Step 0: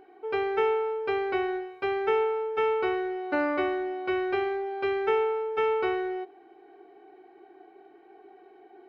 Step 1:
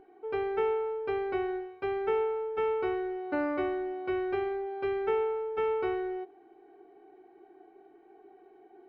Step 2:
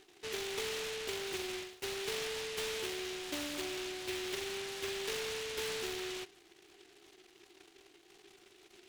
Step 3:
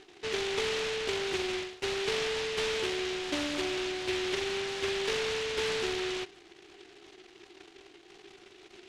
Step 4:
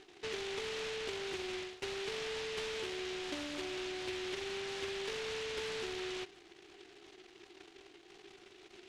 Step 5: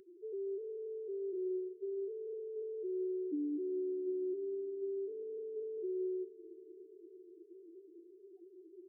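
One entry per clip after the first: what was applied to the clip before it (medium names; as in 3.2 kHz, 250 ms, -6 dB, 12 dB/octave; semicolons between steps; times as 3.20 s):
tilt EQ -2 dB/octave; trim -5.5 dB
compression 3:1, threshold -32 dBFS, peak gain reduction 6 dB; delay time shaken by noise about 2.7 kHz, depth 0.29 ms; trim -5 dB
distance through air 78 m; trim +8 dB
compression, threshold -34 dBFS, peak gain reduction 7 dB; trim -3.5 dB
loudest bins only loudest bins 1; high-order bell 680 Hz -10.5 dB; bucket-brigade echo 220 ms, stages 1024, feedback 78%, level -17 dB; trim +14.5 dB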